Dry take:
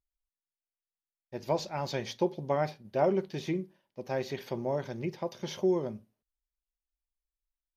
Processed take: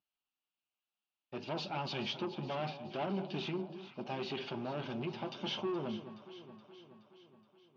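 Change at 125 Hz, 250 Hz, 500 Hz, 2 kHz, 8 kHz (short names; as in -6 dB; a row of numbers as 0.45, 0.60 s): -5.5 dB, -5.0 dB, -9.5 dB, -2.0 dB, n/a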